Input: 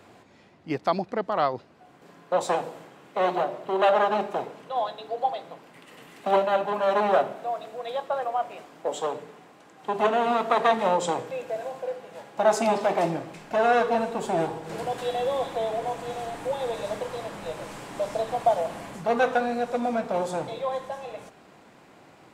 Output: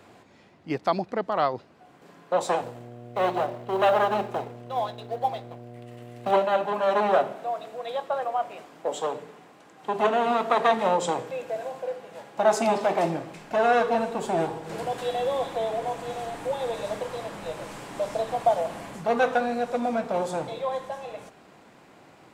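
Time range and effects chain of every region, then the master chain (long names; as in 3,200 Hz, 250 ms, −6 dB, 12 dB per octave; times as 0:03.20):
0:02.61–0:06.31: mu-law and A-law mismatch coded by A + hum with harmonics 120 Hz, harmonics 6, −43 dBFS −3 dB per octave
whole clip: no processing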